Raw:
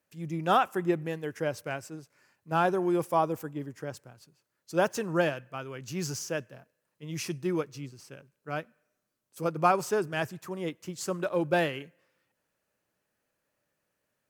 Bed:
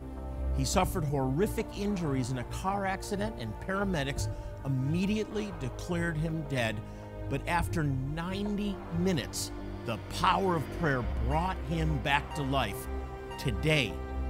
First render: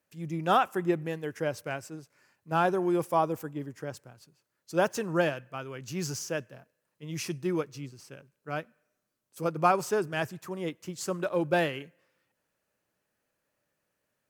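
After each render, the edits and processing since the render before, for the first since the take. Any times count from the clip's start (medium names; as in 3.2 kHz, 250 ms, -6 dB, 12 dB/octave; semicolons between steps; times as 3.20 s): no audible change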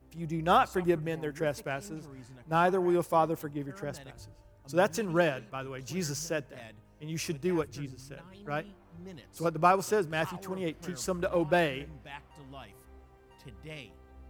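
add bed -17.5 dB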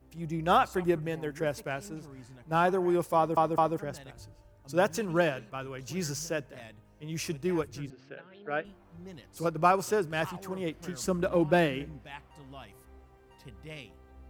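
3.16 s: stutter in place 0.21 s, 3 plays; 7.90–8.65 s: cabinet simulation 230–3700 Hz, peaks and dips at 440 Hz +5 dB, 670 Hz +4 dB, 1 kHz -7 dB, 1.6 kHz +6 dB; 11.03–11.99 s: peaking EQ 230 Hz +7.5 dB 1.1 oct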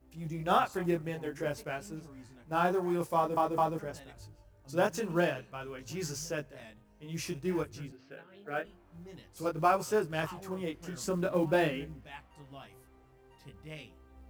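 chorus 0.5 Hz, delay 18.5 ms, depth 5.3 ms; short-mantissa float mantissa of 4-bit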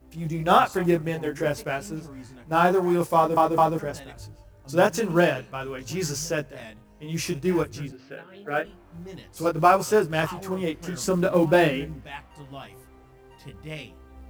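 trim +9 dB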